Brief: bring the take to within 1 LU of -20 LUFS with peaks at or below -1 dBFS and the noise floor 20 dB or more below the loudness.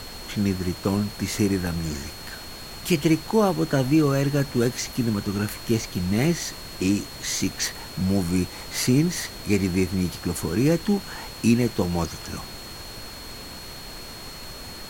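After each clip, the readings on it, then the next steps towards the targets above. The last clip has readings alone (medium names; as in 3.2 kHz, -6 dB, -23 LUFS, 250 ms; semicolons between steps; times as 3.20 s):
steady tone 4.3 kHz; tone level -41 dBFS; noise floor -39 dBFS; noise floor target -45 dBFS; loudness -24.5 LUFS; peak level -7.5 dBFS; loudness target -20.0 LUFS
-> band-stop 4.3 kHz, Q 30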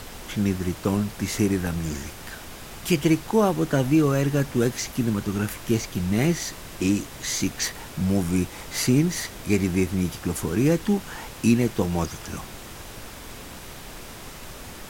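steady tone not found; noise floor -40 dBFS; noise floor target -45 dBFS
-> noise print and reduce 6 dB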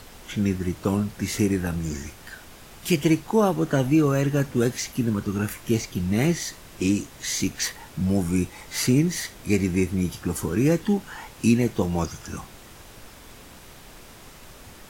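noise floor -46 dBFS; loudness -24.5 LUFS; peak level -7.5 dBFS; loudness target -20.0 LUFS
-> trim +4.5 dB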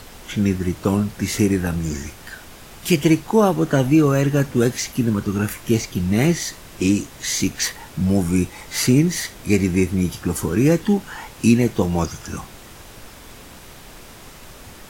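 loudness -20.0 LUFS; peak level -3.0 dBFS; noise floor -42 dBFS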